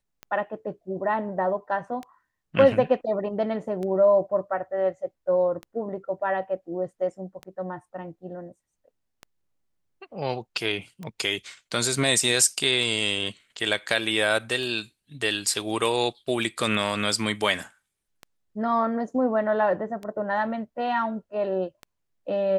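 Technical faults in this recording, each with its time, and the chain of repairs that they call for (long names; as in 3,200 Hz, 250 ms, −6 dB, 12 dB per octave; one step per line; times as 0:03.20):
scratch tick 33 1/3 rpm −22 dBFS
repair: click removal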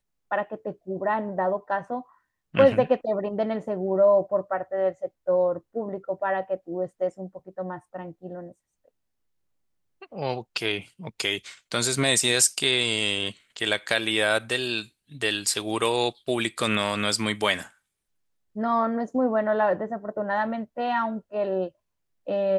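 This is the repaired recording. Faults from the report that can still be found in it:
none of them is left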